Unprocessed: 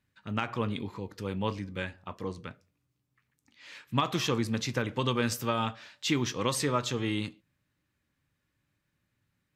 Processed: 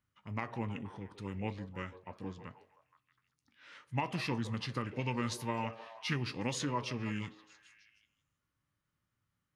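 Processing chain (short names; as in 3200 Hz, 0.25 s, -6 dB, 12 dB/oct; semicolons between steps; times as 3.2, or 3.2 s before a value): delay with a stepping band-pass 0.158 s, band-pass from 570 Hz, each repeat 0.7 oct, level -9.5 dB; formant shift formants -4 st; gain -6.5 dB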